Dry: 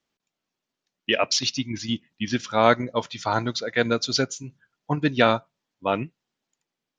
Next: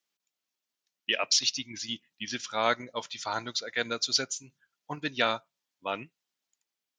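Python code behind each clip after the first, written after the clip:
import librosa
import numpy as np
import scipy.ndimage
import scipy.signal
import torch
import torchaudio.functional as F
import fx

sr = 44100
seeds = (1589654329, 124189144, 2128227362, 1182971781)

y = fx.tilt_eq(x, sr, slope=3.0)
y = y * 10.0 ** (-8.0 / 20.0)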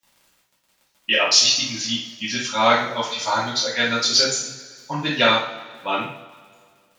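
y = fx.dmg_crackle(x, sr, seeds[0], per_s=27.0, level_db=-46.0)
y = fx.rev_double_slope(y, sr, seeds[1], early_s=0.49, late_s=2.0, knee_db=-18, drr_db=-8.5)
y = y * 10.0 ** (2.0 / 20.0)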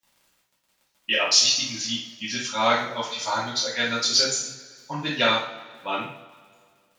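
y = fx.dynamic_eq(x, sr, hz=9300.0, q=0.7, threshold_db=-34.0, ratio=4.0, max_db=4)
y = y * 10.0 ** (-4.5 / 20.0)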